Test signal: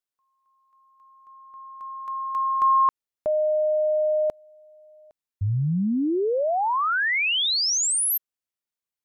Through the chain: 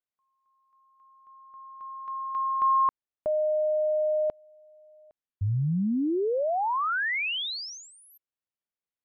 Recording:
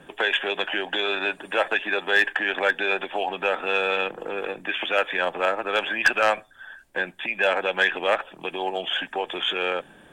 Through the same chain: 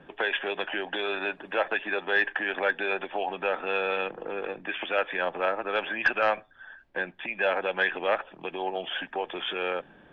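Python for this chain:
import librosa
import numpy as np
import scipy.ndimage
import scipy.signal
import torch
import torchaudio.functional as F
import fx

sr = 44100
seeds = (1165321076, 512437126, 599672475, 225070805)

y = fx.air_absorb(x, sr, metres=260.0)
y = F.gain(torch.from_numpy(y), -2.5).numpy()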